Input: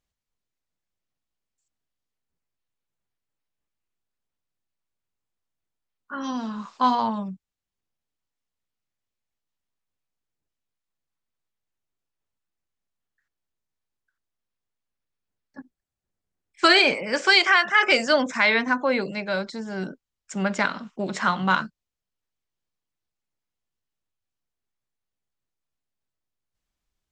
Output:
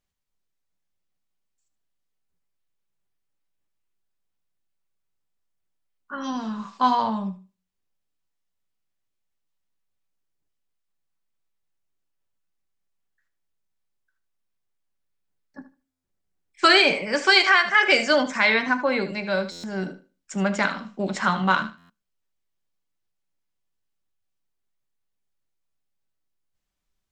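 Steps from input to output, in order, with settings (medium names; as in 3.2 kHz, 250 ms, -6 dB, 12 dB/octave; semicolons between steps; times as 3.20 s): thinning echo 76 ms, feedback 21%, high-pass 390 Hz, level -12 dB; on a send at -10 dB: reverberation RT60 0.25 s, pre-delay 5 ms; on the sum: buffer glitch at 15.91/19.51/21.77 s, samples 512, times 10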